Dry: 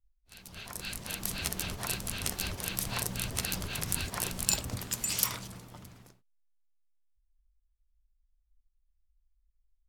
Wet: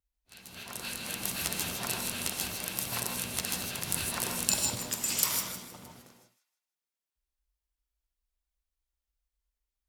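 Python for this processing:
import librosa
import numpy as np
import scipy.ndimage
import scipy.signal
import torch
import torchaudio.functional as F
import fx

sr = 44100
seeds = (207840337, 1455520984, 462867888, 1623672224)

y = fx.law_mismatch(x, sr, coded='A', at=(2.22, 3.87))
y = fx.highpass(y, sr, hz=250.0, slope=6)
y = fx.low_shelf(y, sr, hz=390.0, db=4.0)
y = fx.echo_wet_highpass(y, sr, ms=157, feedback_pct=32, hz=1600.0, wet_db=-11.0)
y = fx.rev_gated(y, sr, seeds[0], gate_ms=180, shape='rising', drr_db=2.5)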